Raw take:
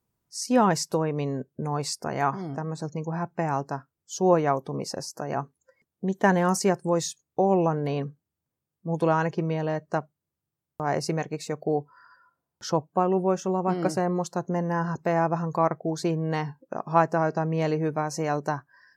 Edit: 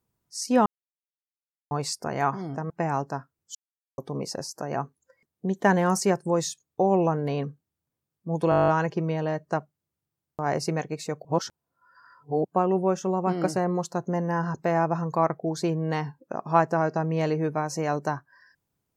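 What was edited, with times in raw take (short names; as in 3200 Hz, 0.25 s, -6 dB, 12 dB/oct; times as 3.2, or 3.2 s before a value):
0.66–1.71 mute
2.7–3.29 cut
4.14–4.57 mute
9.09 stutter 0.02 s, 10 plays
11.66–12.86 reverse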